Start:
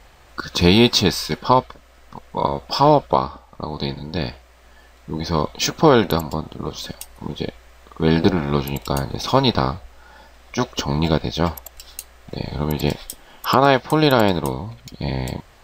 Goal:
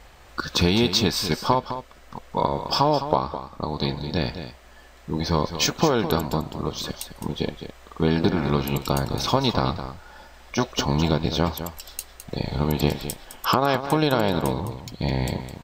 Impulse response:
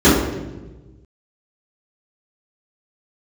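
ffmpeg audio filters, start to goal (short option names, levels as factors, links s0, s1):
-filter_complex "[0:a]acompressor=threshold=0.158:ratio=6,asplit=2[s0][s1];[s1]aecho=0:1:210:0.299[s2];[s0][s2]amix=inputs=2:normalize=0"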